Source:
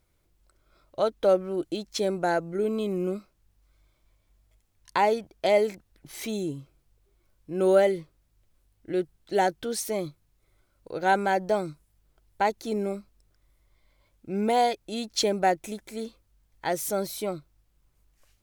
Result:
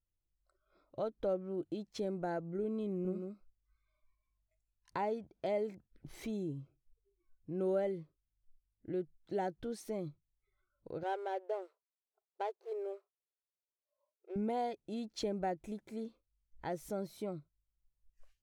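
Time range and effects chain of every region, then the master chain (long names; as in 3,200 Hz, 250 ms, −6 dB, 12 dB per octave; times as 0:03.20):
0:02.90–0:05.00: notch filter 3,300 Hz, Q 11 + single-tap delay 149 ms −6 dB
0:11.03–0:14.36: running median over 25 samples + linear-phase brick-wall high-pass 360 Hz
whole clip: noise reduction from a noise print of the clip's start 23 dB; spectral tilt −3 dB per octave; downward compressor 1.5 to 1, threshold −39 dBFS; level −7.5 dB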